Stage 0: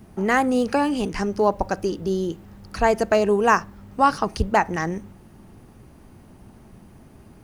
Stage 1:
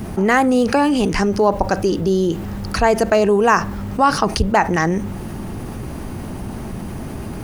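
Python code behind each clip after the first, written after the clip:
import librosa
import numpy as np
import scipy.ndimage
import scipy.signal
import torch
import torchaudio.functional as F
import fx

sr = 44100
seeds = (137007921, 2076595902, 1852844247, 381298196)

y = fx.env_flatten(x, sr, amount_pct=50)
y = F.gain(torch.from_numpy(y), 2.0).numpy()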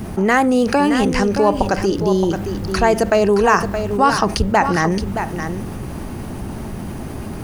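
y = x + 10.0 ** (-8.5 / 20.0) * np.pad(x, (int(621 * sr / 1000.0), 0))[:len(x)]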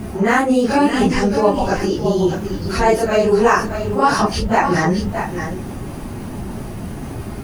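y = fx.phase_scramble(x, sr, seeds[0], window_ms=100)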